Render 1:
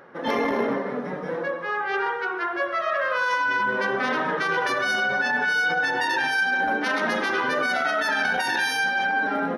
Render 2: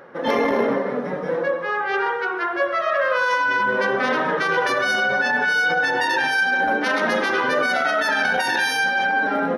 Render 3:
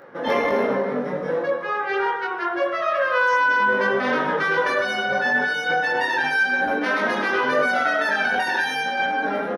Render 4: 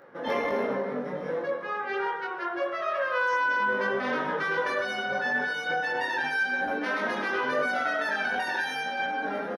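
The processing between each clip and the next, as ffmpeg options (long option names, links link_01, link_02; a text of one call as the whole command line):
ffmpeg -i in.wav -af "equalizer=frequency=530:width=4.3:gain=4.5,volume=3dB" out.wav
ffmpeg -i in.wav -filter_complex "[0:a]asplit=2[link_01][link_02];[link_02]adelay=20,volume=-2.5dB[link_03];[link_01][link_03]amix=inputs=2:normalize=0,acrossover=split=3200[link_04][link_05];[link_05]acompressor=threshold=-35dB:ratio=4:attack=1:release=60[link_06];[link_04][link_06]amix=inputs=2:normalize=0,volume=-2.5dB" out.wav
ffmpeg -i in.wav -af "aecho=1:1:904:0.0891,volume=-7dB" out.wav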